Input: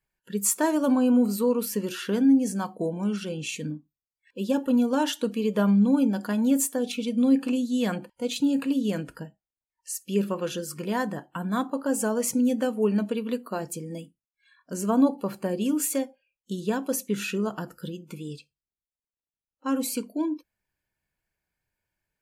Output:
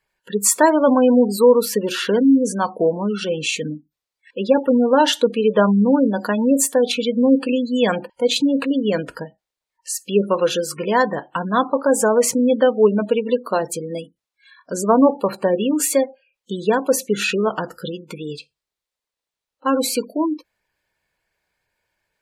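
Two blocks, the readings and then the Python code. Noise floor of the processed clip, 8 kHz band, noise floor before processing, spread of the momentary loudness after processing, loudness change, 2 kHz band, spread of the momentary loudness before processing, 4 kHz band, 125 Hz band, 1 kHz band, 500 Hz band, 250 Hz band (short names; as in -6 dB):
under -85 dBFS, +8.0 dB, under -85 dBFS, 15 LU, +7.5 dB, +10.5 dB, 15 LU, +11.0 dB, +3.5 dB, +12.0 dB, +12.0 dB, +5.0 dB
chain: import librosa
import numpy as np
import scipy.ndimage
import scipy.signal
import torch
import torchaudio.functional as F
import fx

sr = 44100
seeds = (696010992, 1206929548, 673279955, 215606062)

y = fx.spec_gate(x, sr, threshold_db=-30, keep='strong')
y = fx.graphic_eq(y, sr, hz=(500, 1000, 2000, 4000, 8000), db=(9, 7, 6, 9, 4))
y = F.gain(torch.from_numpy(y), 2.5).numpy()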